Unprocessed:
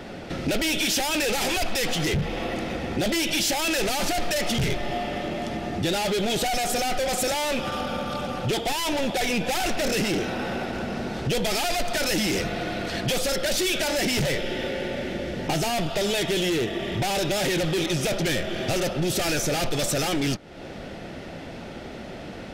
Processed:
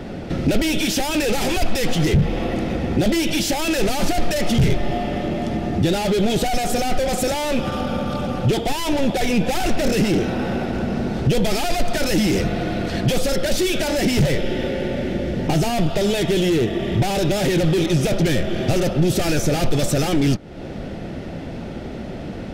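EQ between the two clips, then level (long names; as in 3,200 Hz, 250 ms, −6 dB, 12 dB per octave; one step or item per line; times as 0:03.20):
low-shelf EQ 470 Hz +10.5 dB
0.0 dB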